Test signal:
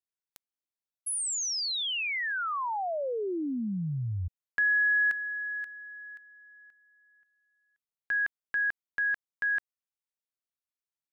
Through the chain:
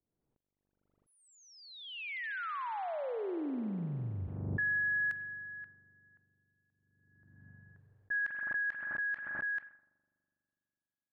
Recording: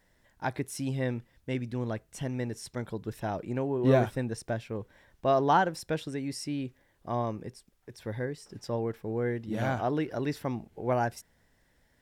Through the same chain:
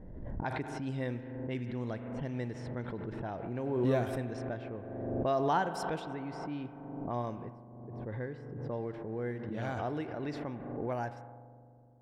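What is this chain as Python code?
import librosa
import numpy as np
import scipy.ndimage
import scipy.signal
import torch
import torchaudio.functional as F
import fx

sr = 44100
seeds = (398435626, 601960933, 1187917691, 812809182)

y = fx.echo_bbd(x, sr, ms=103, stages=2048, feedback_pct=51, wet_db=-22.5)
y = fx.rider(y, sr, range_db=4, speed_s=2.0)
y = fx.rev_spring(y, sr, rt60_s=3.9, pass_ms=(41,), chirp_ms=55, drr_db=10.0)
y = fx.env_lowpass(y, sr, base_hz=370.0, full_db=-23.0)
y = fx.pre_swell(y, sr, db_per_s=35.0)
y = y * librosa.db_to_amplitude(-8.0)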